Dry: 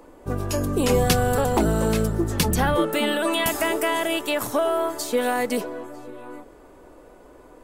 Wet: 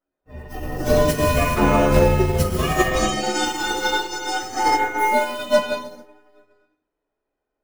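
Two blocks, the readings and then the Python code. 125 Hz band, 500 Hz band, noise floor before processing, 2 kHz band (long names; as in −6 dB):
+2.5 dB, +2.5 dB, −49 dBFS, +4.0 dB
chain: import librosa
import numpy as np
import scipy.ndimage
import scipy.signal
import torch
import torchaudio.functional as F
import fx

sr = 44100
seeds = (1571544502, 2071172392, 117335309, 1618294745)

y = fx.partial_stretch(x, sr, pct=129)
y = fx.rev_gated(y, sr, seeds[0], gate_ms=470, shape='flat', drr_db=-4.0)
y = fx.upward_expand(y, sr, threshold_db=-41.0, expansion=2.5)
y = y * librosa.db_to_amplitude(4.5)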